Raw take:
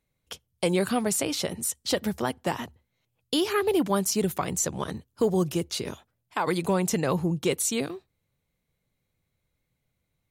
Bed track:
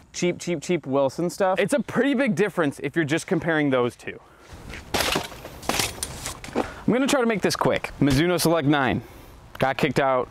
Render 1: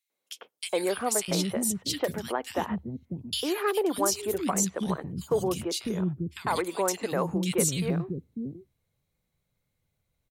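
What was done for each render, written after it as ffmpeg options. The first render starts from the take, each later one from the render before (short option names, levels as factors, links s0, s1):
-filter_complex "[0:a]acrossover=split=290|2200[s0][s1][s2];[s1]adelay=100[s3];[s0]adelay=650[s4];[s4][s3][s2]amix=inputs=3:normalize=0"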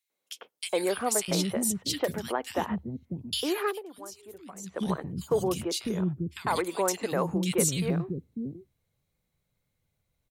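-filter_complex "[0:a]asplit=3[s0][s1][s2];[s0]atrim=end=3.81,asetpts=PTS-STARTPTS,afade=t=out:st=3.63:d=0.18:silence=0.133352[s3];[s1]atrim=start=3.81:end=4.63,asetpts=PTS-STARTPTS,volume=0.133[s4];[s2]atrim=start=4.63,asetpts=PTS-STARTPTS,afade=t=in:d=0.18:silence=0.133352[s5];[s3][s4][s5]concat=n=3:v=0:a=1"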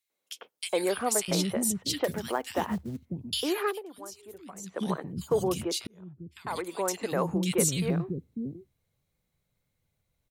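-filter_complex "[0:a]asettb=1/sr,asplit=3[s0][s1][s2];[s0]atrim=end=2.064[s3];[s1]atrim=start=2.06:end=3.06,asetpts=PTS-STARTPTS,afade=t=in:d=0.004:c=qsin,afade=t=out:st=0.996:d=0.004:c=qsin,acrusher=bits=6:mode=log:mix=0:aa=0.000001[s4];[s2]atrim=start=3.056[s5];[s3][s4]acrossfade=d=0.004:c1=hsin:c2=qsin[s6];[s6][s5]acrossfade=d=0.004:c1=qsin:c2=hsin,asettb=1/sr,asplit=3[s7][s8][s9];[s7]atrim=end=4.594[s10];[s8]atrim=start=4.59:end=5.17,asetpts=PTS-STARTPTS,afade=t=in:d=0.004:c=qsin,afade=t=out:st=0.576:d=0.004:c=qsin,highpass=150[s11];[s9]atrim=start=5.166[s12];[s10][s11]acrossfade=d=0.004:c1=hsin:c2=qsin[s13];[s13][s12]acrossfade=d=0.004:c1=qsin:c2=hsin,asplit=2[s14][s15];[s14]atrim=end=5.87,asetpts=PTS-STARTPTS,afade=t=out:st=5.866:d=0.004:c=hsin[s16];[s15]atrim=start=5.87,asetpts=PTS-STARTPTS,afade=t=in:d=1.36[s17];[s16][s17]concat=n=2:v=0:a=1"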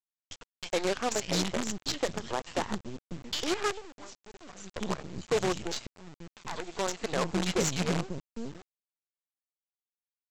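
-af "aresample=16000,acrusher=bits=5:dc=4:mix=0:aa=0.000001,aresample=44100,asoftclip=type=tanh:threshold=0.112"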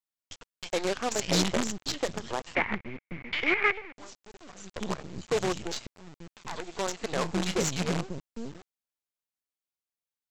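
-filter_complex "[0:a]asettb=1/sr,asplit=3[s0][s1][s2];[s0]atrim=end=2.554[s3];[s1]atrim=start=2.55:end=3.97,asetpts=PTS-STARTPTS,afade=t=in:d=0.004:c=qsin,afade=t=out:st=1.416:d=0.004:c=qsin,lowpass=f=2200:t=q:w=11[s4];[s2]atrim=start=3.966[s5];[s3][s4]acrossfade=d=0.004:c1=hsin:c2=qsin[s6];[s6][s5]acrossfade=d=0.004:c1=qsin:c2=hsin,asettb=1/sr,asplit=3[s7][s8][s9];[s7]atrim=end=7.084[s10];[s8]atrim=start=7.08:end=7.57,asetpts=PTS-STARTPTS,afade=t=in:d=0.004:c=qsin,afade=t=out:st=0.486:d=0.004:c=qsin,asplit=2[s11][s12];[s12]adelay=31,volume=0.224[s13];[s11][s13]amix=inputs=2:normalize=0,atrim=end_sample=21609[s14];[s9]atrim=start=7.566[s15];[s10][s14]acrossfade=d=0.004:c1=hsin:c2=qsin[s16];[s16][s15]acrossfade=d=0.004:c1=qsin:c2=hsin,asplit=3[s17][s18][s19];[s17]atrim=end=1.192[s20];[s18]atrim=start=1.188:end=1.672,asetpts=PTS-STARTPTS,volume=1.58[s21];[s19]atrim=start=1.668[s22];[s20][s21]acrossfade=d=0.004:c1=hsin:c2=hsin[s23];[s23][s22]acrossfade=d=0.004:c1=hsin:c2=hsin"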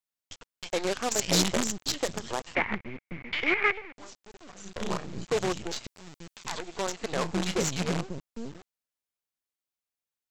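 -filter_complex "[0:a]asettb=1/sr,asplit=3[s0][s1][s2];[s0]atrim=end=0.914[s3];[s1]atrim=start=0.91:end=2.43,asetpts=PTS-STARTPTS,afade=t=in:d=0.004:c=qsin,afade=t=out:st=1.516:d=0.004:c=qsin,highshelf=f=7300:g=10[s4];[s2]atrim=start=2.426[s5];[s3][s4]acrossfade=d=0.004:c1=hsin:c2=qsin[s6];[s6][s5]acrossfade=d=0.004:c1=qsin:c2=hsin,asettb=1/sr,asplit=3[s7][s8][s9];[s7]atrim=end=4.624[s10];[s8]atrim=start=4.62:end=5.25,asetpts=PTS-STARTPTS,afade=t=in:d=0.004:c=qsin,afade=t=out:st=0.626:d=0.004:c=qsin,asplit=2[s11][s12];[s12]adelay=35,volume=0.794[s13];[s11][s13]amix=inputs=2:normalize=0,atrim=end_sample=27783[s14];[s9]atrim=start=5.246[s15];[s10][s14]acrossfade=d=0.004:c1=hsin:c2=qsin[s16];[s16][s15]acrossfade=d=0.004:c1=qsin:c2=hsin,asettb=1/sr,asplit=3[s17][s18][s19];[s17]atrim=end=5.844[s20];[s18]atrim=start=5.84:end=6.59,asetpts=PTS-STARTPTS,afade=t=in:d=0.004:c=qsin,afade=t=out:st=0.746:d=0.004:c=qsin,highshelf=f=2500:g=9.5[s21];[s19]atrim=start=6.586[s22];[s20][s21]acrossfade=d=0.004:c1=hsin:c2=qsin[s23];[s23][s22]acrossfade=d=0.004:c1=qsin:c2=hsin"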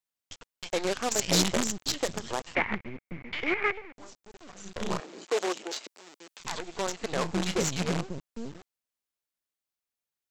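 -filter_complex "[0:a]asettb=1/sr,asplit=3[s0][s1][s2];[s0]atrim=end=2.894[s3];[s1]atrim=start=2.89:end=4.33,asetpts=PTS-STARTPTS,afade=t=in:d=0.004:c=qsin,afade=t=out:st=1.436:d=0.004:c=qsin,equalizer=f=3100:t=o:w=2.6:g=-4.5[s4];[s2]atrim=start=4.326[s5];[s3][s4]acrossfade=d=0.004:c1=hsin:c2=qsin[s6];[s6][s5]acrossfade=d=0.004:c1=qsin:c2=hsin,asettb=1/sr,asplit=3[s7][s8][s9];[s7]atrim=end=5.004[s10];[s8]atrim=start=5:end=6.4,asetpts=PTS-STARTPTS,afade=t=in:d=0.004:c=qsin,afade=t=out:st=1.396:d=0.004:c=qsin,highpass=f=310:w=0.5412,highpass=f=310:w=1.3066[s11];[s9]atrim=start=6.396[s12];[s10][s11]acrossfade=d=0.004:c1=hsin:c2=qsin[s13];[s13][s12]acrossfade=d=0.004:c1=qsin:c2=hsin"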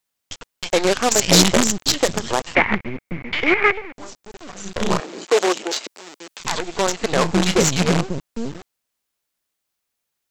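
-af "volume=3.76,alimiter=limit=0.794:level=0:latency=1"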